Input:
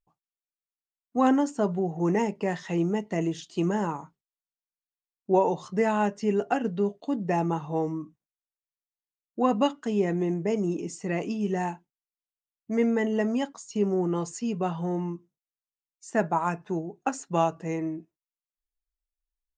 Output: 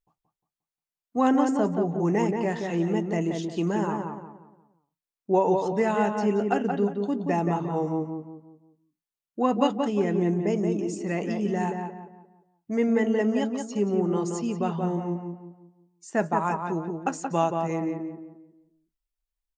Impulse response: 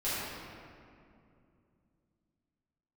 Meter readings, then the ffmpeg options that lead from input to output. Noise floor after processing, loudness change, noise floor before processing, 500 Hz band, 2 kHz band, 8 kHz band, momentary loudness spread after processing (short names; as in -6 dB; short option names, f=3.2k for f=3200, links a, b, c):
under -85 dBFS, +1.5 dB, under -85 dBFS, +1.5 dB, +1.0 dB, 0.0 dB, 10 LU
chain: -filter_complex "[0:a]asplit=2[a][b];[b]adelay=177,lowpass=f=1.9k:p=1,volume=-4dB,asplit=2[c][d];[d]adelay=177,lowpass=f=1.9k:p=1,volume=0.38,asplit=2[e][f];[f]adelay=177,lowpass=f=1.9k:p=1,volume=0.38,asplit=2[g][h];[h]adelay=177,lowpass=f=1.9k:p=1,volume=0.38,asplit=2[i][j];[j]adelay=177,lowpass=f=1.9k:p=1,volume=0.38[k];[a][c][e][g][i][k]amix=inputs=6:normalize=0"